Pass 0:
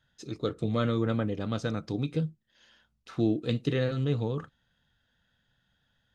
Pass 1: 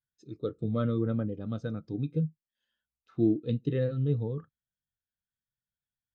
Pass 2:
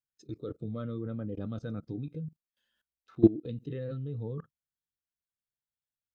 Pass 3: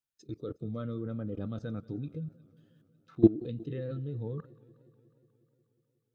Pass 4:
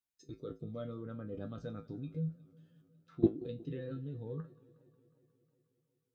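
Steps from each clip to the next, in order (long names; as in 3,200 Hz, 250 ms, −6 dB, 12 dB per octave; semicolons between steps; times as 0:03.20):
every bin expanded away from the loudest bin 1.5 to 1
output level in coarse steps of 22 dB; level +8 dB
feedback echo with a swinging delay time 181 ms, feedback 72%, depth 138 cents, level −23 dB
tuned comb filter 54 Hz, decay 0.19 s, harmonics odd, mix 90%; level +4 dB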